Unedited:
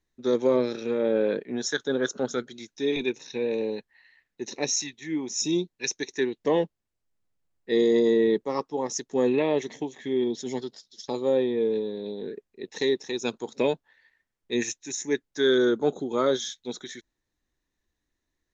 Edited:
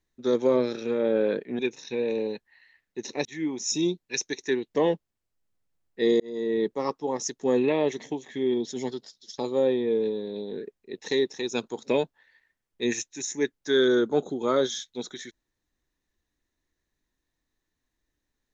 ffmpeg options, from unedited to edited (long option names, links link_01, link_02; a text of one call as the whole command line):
ffmpeg -i in.wav -filter_complex "[0:a]asplit=4[link_01][link_02][link_03][link_04];[link_01]atrim=end=1.592[link_05];[link_02]atrim=start=3.018:end=4.682[link_06];[link_03]atrim=start=4.948:end=7.9,asetpts=PTS-STARTPTS,afade=type=out:start_time=2.948:duration=0.004:curve=hsin[link_07];[link_04]atrim=start=7.9,asetpts=PTS-STARTPTS,afade=type=in:duration=0.57[link_08];[link_05][link_06]acrossfade=duration=0.004:curve1=hsin:curve2=hsin[link_09];[link_07][link_08]concat=n=2:v=0:a=1[link_10];[link_09][link_10]acrossfade=duration=0.004:curve1=hsin:curve2=hsin" out.wav